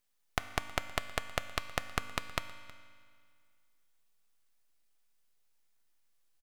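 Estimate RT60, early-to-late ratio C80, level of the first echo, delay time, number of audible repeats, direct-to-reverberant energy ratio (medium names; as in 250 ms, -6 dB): 2.0 s, 12.0 dB, -21.5 dB, 318 ms, 1, 10.0 dB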